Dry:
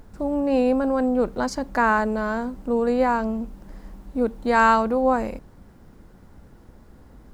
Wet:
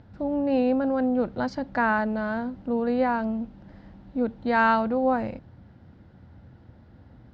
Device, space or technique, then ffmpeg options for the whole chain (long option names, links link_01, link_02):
guitar cabinet: -af "highpass=76,equalizer=frequency=84:width_type=q:width=4:gain=8,equalizer=frequency=120:width_type=q:width=4:gain=8,equalizer=frequency=420:width_type=q:width=4:gain=-7,equalizer=frequency=1100:width_type=q:width=4:gain=-7,equalizer=frequency=2400:width_type=q:width=4:gain=-3,lowpass=frequency=4200:width=0.5412,lowpass=frequency=4200:width=1.3066,volume=-1.5dB"